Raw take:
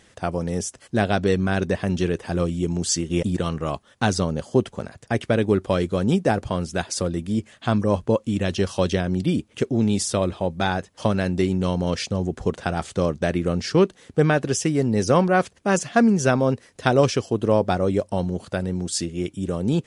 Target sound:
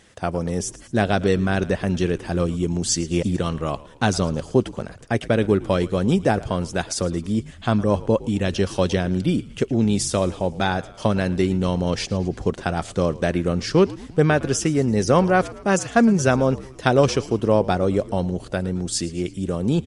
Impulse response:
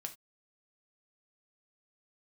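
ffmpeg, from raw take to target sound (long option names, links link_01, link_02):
-filter_complex "[0:a]asplit=6[link_01][link_02][link_03][link_04][link_05][link_06];[link_02]adelay=111,afreqshift=-68,volume=-19dB[link_07];[link_03]adelay=222,afreqshift=-136,volume=-24.2dB[link_08];[link_04]adelay=333,afreqshift=-204,volume=-29.4dB[link_09];[link_05]adelay=444,afreqshift=-272,volume=-34.6dB[link_10];[link_06]adelay=555,afreqshift=-340,volume=-39.8dB[link_11];[link_01][link_07][link_08][link_09][link_10][link_11]amix=inputs=6:normalize=0,volume=1dB"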